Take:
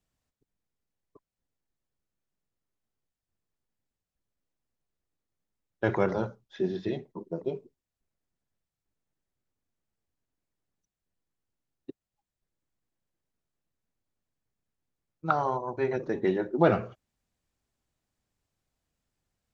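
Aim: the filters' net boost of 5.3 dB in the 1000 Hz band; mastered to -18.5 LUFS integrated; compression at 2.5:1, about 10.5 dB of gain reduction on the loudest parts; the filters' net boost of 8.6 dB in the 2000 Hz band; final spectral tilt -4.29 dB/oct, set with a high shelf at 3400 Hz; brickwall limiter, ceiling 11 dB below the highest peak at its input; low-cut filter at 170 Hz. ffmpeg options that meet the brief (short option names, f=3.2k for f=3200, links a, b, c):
-af "highpass=170,equalizer=f=1k:t=o:g=4,equalizer=f=2k:t=o:g=9,highshelf=f=3.4k:g=3.5,acompressor=threshold=-31dB:ratio=2.5,volume=18.5dB,alimiter=limit=-5dB:level=0:latency=1"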